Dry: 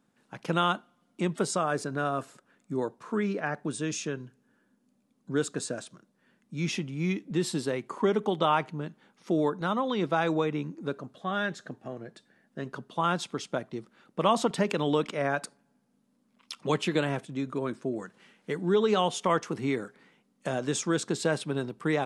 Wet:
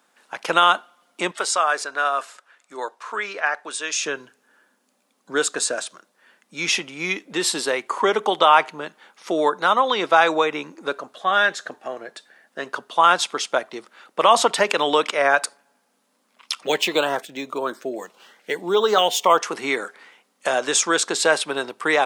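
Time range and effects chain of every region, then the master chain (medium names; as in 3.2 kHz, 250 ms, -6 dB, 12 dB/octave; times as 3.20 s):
1.31–4.03 s: high-pass 1 kHz 6 dB/octave + treble shelf 10 kHz -11.5 dB
16.63–19.40 s: LFO notch saw up 1.7 Hz 930–2800 Hz + decimation joined by straight lines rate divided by 2×
whole clip: high-pass 660 Hz 12 dB/octave; loudness maximiser +15 dB; trim -1 dB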